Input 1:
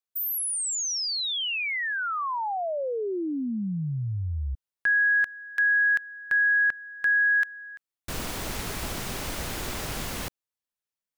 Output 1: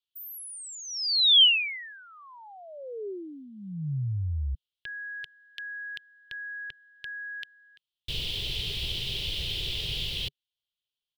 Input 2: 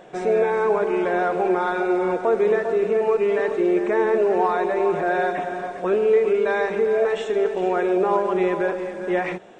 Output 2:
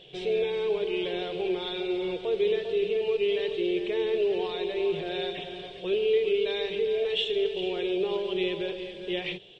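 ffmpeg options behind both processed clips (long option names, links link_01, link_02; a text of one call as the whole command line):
ffmpeg -i in.wav -af "firequalizer=gain_entry='entry(140,0);entry(230,-18);entry(400,-5);entry(670,-17);entry(1400,-22);entry(3100,14);entry(6400,-12)':delay=0.05:min_phase=1" out.wav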